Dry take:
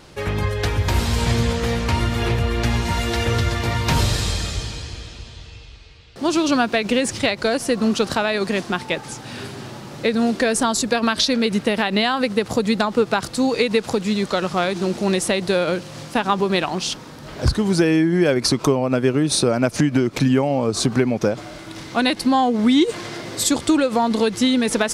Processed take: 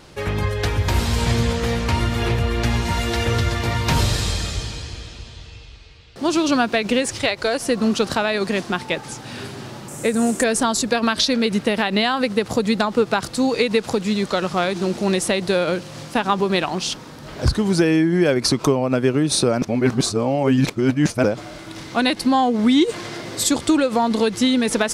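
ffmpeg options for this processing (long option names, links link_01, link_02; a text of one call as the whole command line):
ffmpeg -i in.wav -filter_complex "[0:a]asettb=1/sr,asplit=3[link_01][link_02][link_03];[link_01]atrim=end=7.024[link_04];[link_02]atrim=start=7.02:end=7.63,asetpts=PTS-STARTPTS,afade=type=in:duration=0.004:curve=qsin,afade=type=out:start_time=0.606:duration=0.004:curve=qsin,equalizer=frequency=200:width_type=o:width=0.85:gain=-9[link_05];[link_03]atrim=start=7.626[link_06];[link_04][link_05]acrossfade=duration=0.004:curve1=hsin:curve2=qsin[link_07];[link_07][link_06]acrossfade=duration=0.004:curve1=qsin:curve2=hsin,asettb=1/sr,asplit=3[link_08][link_09][link_10];[link_08]atrim=end=9.884[link_11];[link_09]atrim=start=9.88:end=10.44,asetpts=PTS-STARTPTS,afade=type=in:duration=0.004:curve=qsin,afade=type=out:start_time=0.556:duration=0.004:curve=qsin,highshelf=frequency=5900:width_type=q:width=3:gain=11.5[link_12];[link_10]atrim=start=10.436[link_13];[link_11][link_12]acrossfade=duration=0.004:curve1=hsin:curve2=qsin[link_14];[link_14][link_13]acrossfade=duration=0.004:curve1=qsin:curve2=hsin,asplit=3[link_15][link_16][link_17];[link_15]atrim=end=19.622[link_18];[link_16]atrim=start=19.618:end=21.242,asetpts=PTS-STARTPTS,areverse[link_19];[link_17]atrim=start=21.238[link_20];[link_18][link_19]acrossfade=duration=0.004:curve1=hsin:curve2=hsin[link_21];[link_21][link_20]acrossfade=duration=0.004:curve1=hsin:curve2=hsin" out.wav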